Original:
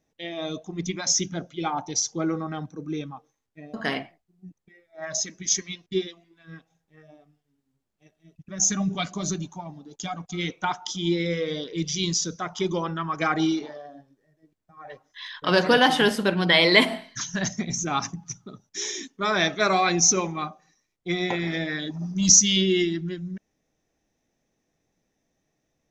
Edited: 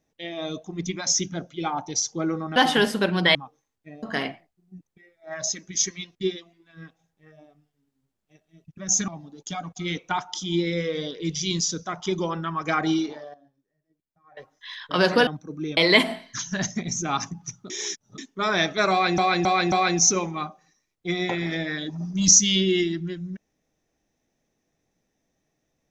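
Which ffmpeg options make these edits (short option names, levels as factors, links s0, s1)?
-filter_complex "[0:a]asplit=13[s0][s1][s2][s3][s4][s5][s6][s7][s8][s9][s10][s11][s12];[s0]atrim=end=2.562[s13];[s1]atrim=start=15.798:end=16.592[s14];[s2]atrim=start=3.058:end=8.792[s15];[s3]atrim=start=9.608:end=13.872[s16];[s4]atrim=start=13.868:end=14.902,asetpts=PTS-STARTPTS,volume=0.251[s17];[s5]atrim=start=14.898:end=15.802[s18];[s6]atrim=start=2.558:end=3.062[s19];[s7]atrim=start=16.588:end=18.522[s20];[s8]atrim=start=18.518:end=19.002,asetpts=PTS-STARTPTS,areverse[s21];[s9]atrim=start=18.998:end=20.002[s22];[s10]atrim=start=19.728:end=20.002[s23];[s11]atrim=start=19.728:end=20.002[s24];[s12]atrim=start=19.728[s25];[s13][s14]acrossfade=d=0.004:c1=hsin:c2=hsin[s26];[s26][s15]acrossfade=d=0.004:c1=hsin:c2=hsin[s27];[s27][s16]acrossfade=d=0.004:c1=hsin:c2=hsin[s28];[s28][s17]acrossfade=d=0.004:c1=hsin:c2=hsin[s29];[s29][s18]acrossfade=d=0.004:c1=hsin:c2=hsin[s30];[s30][s19]acrossfade=d=0.004:c1=hsin:c2=hsin[s31];[s31][s20]acrossfade=d=0.004:c1=hsin:c2=hsin[s32];[s32][s21]acrossfade=d=0.004:c1=hsin:c2=hsin[s33];[s33][s22]acrossfade=d=0.004:c1=hsin:c2=hsin[s34];[s34][s23]acrossfade=d=0.004:c1=hsin:c2=hsin[s35];[s35][s24]acrossfade=d=0.004:c1=hsin:c2=hsin[s36];[s36][s25]acrossfade=d=0.004:c1=hsin:c2=hsin"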